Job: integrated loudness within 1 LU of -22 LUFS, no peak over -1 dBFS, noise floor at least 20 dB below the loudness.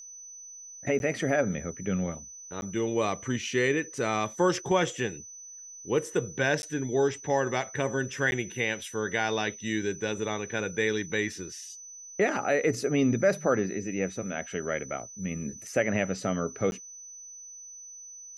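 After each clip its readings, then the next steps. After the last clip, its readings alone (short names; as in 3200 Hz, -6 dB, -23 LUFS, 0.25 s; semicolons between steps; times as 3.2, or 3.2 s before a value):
dropouts 5; longest dropout 11 ms; steady tone 6000 Hz; tone level -43 dBFS; loudness -29.0 LUFS; peak -12.0 dBFS; loudness target -22.0 LUFS
-> interpolate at 0.99/2.61/6.62/8.31/16.71, 11 ms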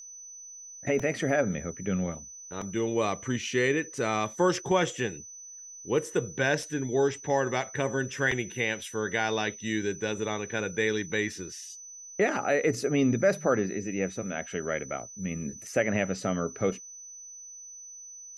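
dropouts 0; steady tone 6000 Hz; tone level -43 dBFS
-> notch 6000 Hz, Q 30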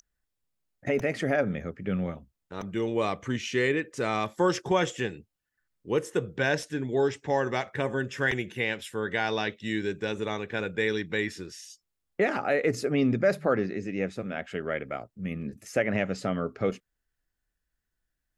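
steady tone none; loudness -29.0 LUFS; peak -12.0 dBFS; loudness target -22.0 LUFS
-> gain +7 dB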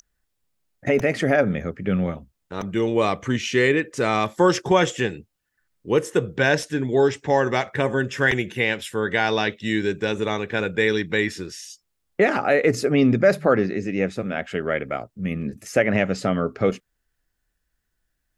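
loudness -22.0 LUFS; peak -5.0 dBFS; noise floor -76 dBFS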